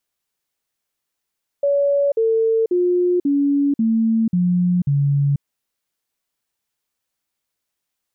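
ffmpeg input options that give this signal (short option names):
-f lavfi -i "aevalsrc='0.2*clip(min(mod(t,0.54),0.49-mod(t,0.54))/0.005,0,1)*sin(2*PI*566*pow(2,-floor(t/0.54)/3)*mod(t,0.54))':d=3.78:s=44100"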